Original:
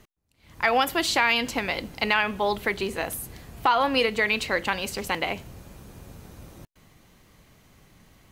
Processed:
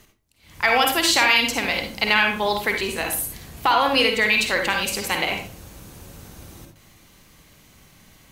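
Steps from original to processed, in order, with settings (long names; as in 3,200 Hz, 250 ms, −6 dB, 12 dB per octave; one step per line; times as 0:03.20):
high-shelf EQ 2,200 Hz +8 dB
convolution reverb RT60 0.35 s, pre-delay 46 ms, DRR 3 dB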